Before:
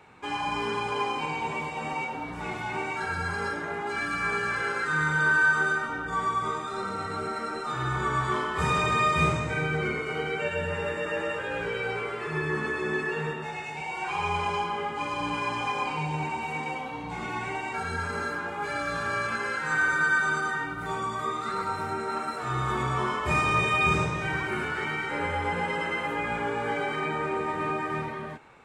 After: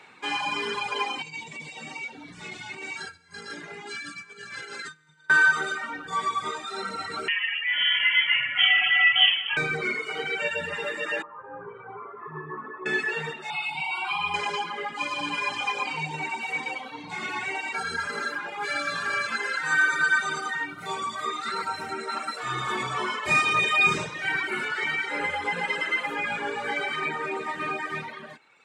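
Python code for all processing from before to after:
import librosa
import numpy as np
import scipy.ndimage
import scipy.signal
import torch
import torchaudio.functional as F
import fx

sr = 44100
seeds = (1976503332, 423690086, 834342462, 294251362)

y = fx.chain(x, sr, fx.lowpass(hz=8800.0, slope=24),
    fx.peak_eq(hz=1000.0, db=-13.0, octaves=3.0),
    fx.over_compress(threshold_db=-40.0, ratio=-0.5), at=(1.22, 5.3))
y = fx.chain(y, sr, fx.dynamic_eq(hz=2500.0, q=5.1, threshold_db=-43.0, ratio=4.0, max_db=-6),
    fx.freq_invert(carrier_hz=3200), at=(7.28, 9.57))
y = fx.chain(y, sr, fx.ladder_lowpass(hz=1200.0, resonance_pct=70),
    fx.low_shelf(hz=310.0, db=8.5),
    fx.comb(ms=7.5, depth=0.36), at=(11.22, 12.86))
y = fx.chain(y, sr, fx.fixed_phaser(hz=1800.0, stages=6),
    fx.env_flatten(amount_pct=50), at=(13.5, 14.34))
y = scipy.signal.sosfilt(scipy.signal.butter(2, 180.0, 'highpass', fs=sr, output='sos'), y)
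y = fx.dereverb_blind(y, sr, rt60_s=1.6)
y = fx.graphic_eq_10(y, sr, hz=(2000, 4000, 8000), db=(6, 8, 5))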